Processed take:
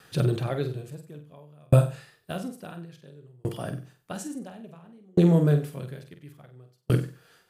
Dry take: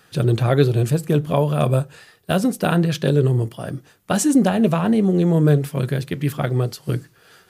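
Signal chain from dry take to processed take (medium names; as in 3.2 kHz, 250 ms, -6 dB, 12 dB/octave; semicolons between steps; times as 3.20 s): on a send: flutter echo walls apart 8.1 m, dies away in 0.41 s; on the sum: sawtooth tremolo in dB decaying 0.58 Hz, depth 40 dB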